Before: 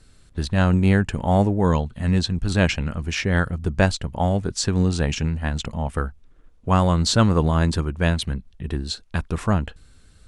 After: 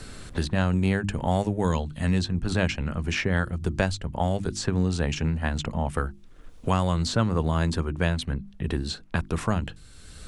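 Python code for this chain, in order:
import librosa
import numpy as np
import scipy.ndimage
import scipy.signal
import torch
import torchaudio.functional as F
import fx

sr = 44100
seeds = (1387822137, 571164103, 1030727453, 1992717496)

y = fx.hum_notches(x, sr, base_hz=50, count=7)
y = fx.band_squash(y, sr, depth_pct=70)
y = y * 10.0 ** (-4.5 / 20.0)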